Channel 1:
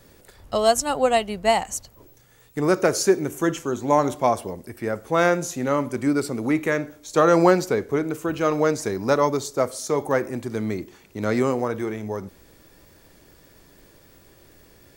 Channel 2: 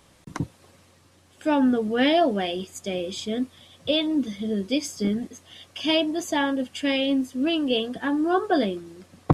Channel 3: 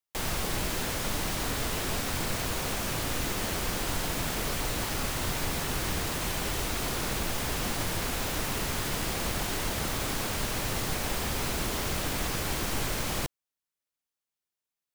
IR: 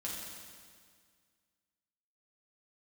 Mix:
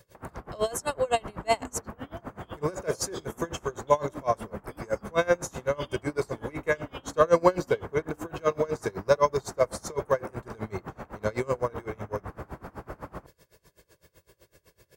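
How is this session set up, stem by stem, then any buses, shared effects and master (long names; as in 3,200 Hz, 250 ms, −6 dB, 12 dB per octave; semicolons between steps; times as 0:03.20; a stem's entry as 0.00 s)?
−2.5 dB, 0.00 s, no bus, no send, comb filter 1.9 ms, depth 71%
−7.0 dB, 0.00 s, bus A, no send, downward compressor, threshold −31 dBFS, peak gain reduction 17.5 dB; every bin expanded away from the loudest bin 1.5 to 1
+2.0 dB, 0.00 s, bus A, no send, low-pass filter 1,300 Hz 24 dB per octave
bus A: 0.0 dB, high-shelf EQ 2,000 Hz +11 dB; brickwall limiter −25.5 dBFS, peak gain reduction 8.5 dB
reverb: not used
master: high-pass filter 52 Hz; tremolo with a sine in dB 7.9 Hz, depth 26 dB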